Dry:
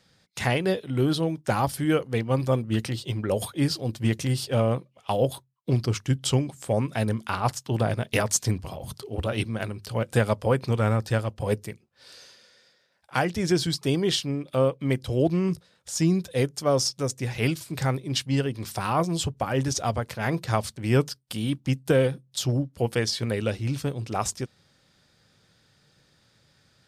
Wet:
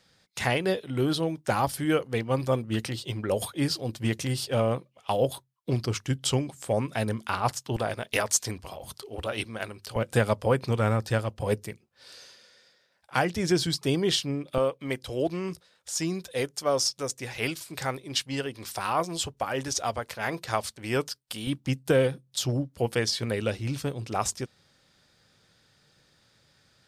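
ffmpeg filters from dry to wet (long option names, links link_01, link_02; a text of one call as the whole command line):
ffmpeg -i in.wav -af "asetnsamples=nb_out_samples=441:pad=0,asendcmd='7.76 equalizer g -12;9.96 equalizer g -2.5;14.58 equalizer g -12;21.47 equalizer g -3.5',equalizer=frequency=130:width_type=o:width=2.5:gain=-4.5" out.wav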